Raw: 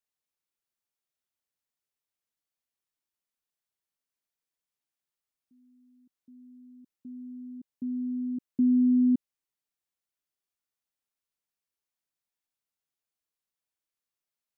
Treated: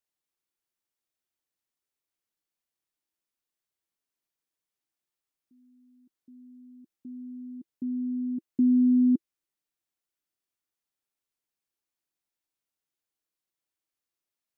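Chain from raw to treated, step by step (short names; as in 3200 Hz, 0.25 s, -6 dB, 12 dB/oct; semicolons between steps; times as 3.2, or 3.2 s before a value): bell 330 Hz +6 dB 0.4 oct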